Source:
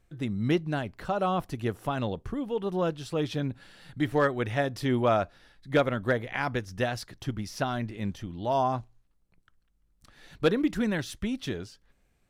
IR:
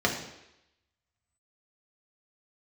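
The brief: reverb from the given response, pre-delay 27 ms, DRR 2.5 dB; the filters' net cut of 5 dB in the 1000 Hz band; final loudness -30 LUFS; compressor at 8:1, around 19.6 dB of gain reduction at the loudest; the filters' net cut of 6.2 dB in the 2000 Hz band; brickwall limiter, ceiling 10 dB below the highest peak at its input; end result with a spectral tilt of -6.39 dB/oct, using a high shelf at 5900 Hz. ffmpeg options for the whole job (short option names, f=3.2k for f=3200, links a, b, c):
-filter_complex "[0:a]equalizer=f=1k:t=o:g=-6,equalizer=f=2k:t=o:g=-5,highshelf=f=5.9k:g=-7.5,acompressor=threshold=-41dB:ratio=8,alimiter=level_in=15dB:limit=-24dB:level=0:latency=1,volume=-15dB,asplit=2[a][b];[1:a]atrim=start_sample=2205,adelay=27[c];[b][c]afir=irnorm=-1:irlink=0,volume=-15.5dB[d];[a][d]amix=inputs=2:normalize=0,volume=16dB"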